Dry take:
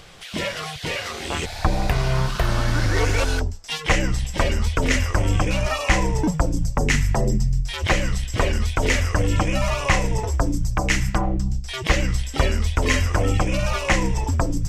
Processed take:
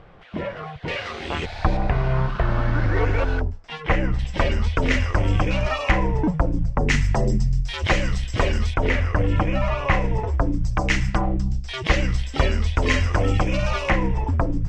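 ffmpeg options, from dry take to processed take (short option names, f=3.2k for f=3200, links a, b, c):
-af "asetnsamples=n=441:p=0,asendcmd='0.88 lowpass f 3300;1.77 lowpass f 1900;4.19 lowpass f 3700;5.91 lowpass f 2100;6.89 lowpass f 5400;8.74 lowpass f 2300;10.64 lowpass f 4700;13.9 lowpass f 2100',lowpass=1.3k"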